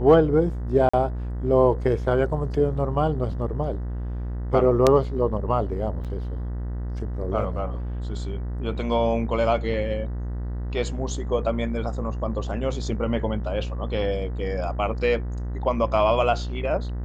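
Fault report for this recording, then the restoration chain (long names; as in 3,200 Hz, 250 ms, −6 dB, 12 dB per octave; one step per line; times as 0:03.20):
mains buzz 60 Hz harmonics 33 −29 dBFS
0:00.89–0:00.94: drop-out 45 ms
0:06.04–0:06.05: drop-out 7.2 ms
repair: hum removal 60 Hz, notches 33
repair the gap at 0:00.89, 45 ms
repair the gap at 0:06.04, 7.2 ms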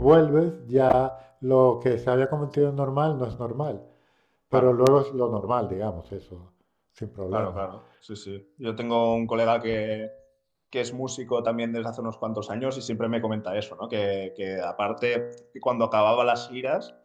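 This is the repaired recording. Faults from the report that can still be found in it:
none of them is left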